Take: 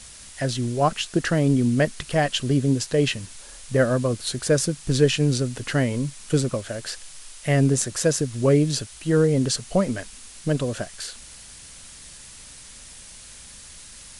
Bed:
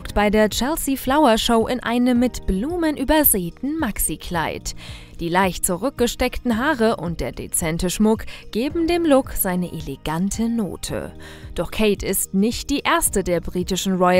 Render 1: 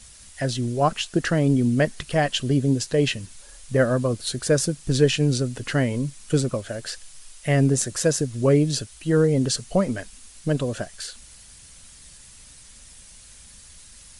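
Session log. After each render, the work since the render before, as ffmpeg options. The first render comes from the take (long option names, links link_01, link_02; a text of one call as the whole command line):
ffmpeg -i in.wav -af "afftdn=noise_reduction=6:noise_floor=-44" out.wav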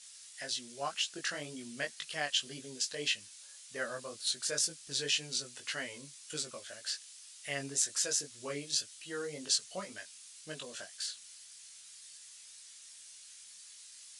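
ffmpeg -i in.wav -af "bandpass=frequency=5200:width_type=q:width=0.67:csg=0,flanger=delay=19:depth=2.7:speed=1.9" out.wav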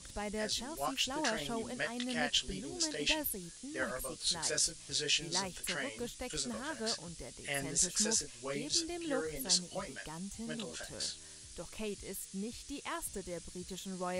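ffmpeg -i in.wav -i bed.wav -filter_complex "[1:a]volume=-22.5dB[link_01];[0:a][link_01]amix=inputs=2:normalize=0" out.wav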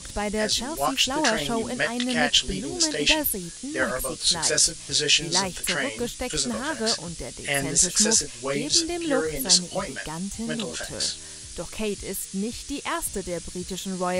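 ffmpeg -i in.wav -af "volume=12dB,alimiter=limit=-3dB:level=0:latency=1" out.wav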